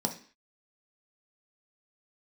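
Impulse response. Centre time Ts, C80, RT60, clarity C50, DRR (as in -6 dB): 11 ms, 17.0 dB, 0.45 s, 11.5 dB, 2.5 dB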